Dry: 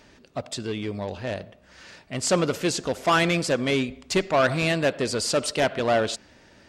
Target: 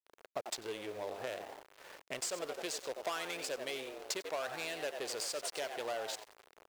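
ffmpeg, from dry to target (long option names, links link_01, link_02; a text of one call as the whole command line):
ffmpeg -i in.wav -filter_complex "[0:a]aemphasis=mode=production:type=75fm,asplit=6[link_01][link_02][link_03][link_04][link_05][link_06];[link_02]adelay=89,afreqshift=100,volume=-8.5dB[link_07];[link_03]adelay=178,afreqshift=200,volume=-16dB[link_08];[link_04]adelay=267,afreqshift=300,volume=-23.6dB[link_09];[link_05]adelay=356,afreqshift=400,volume=-31.1dB[link_10];[link_06]adelay=445,afreqshift=500,volume=-38.6dB[link_11];[link_01][link_07][link_08][link_09][link_10][link_11]amix=inputs=6:normalize=0,adynamicsmooth=sensitivity=4:basefreq=780,highpass=97,acompressor=threshold=-38dB:ratio=16,aeval=exprs='val(0)*gte(abs(val(0)),0.00335)':channel_layout=same,lowshelf=frequency=310:width_type=q:width=1.5:gain=-10.5,volume=1.5dB" out.wav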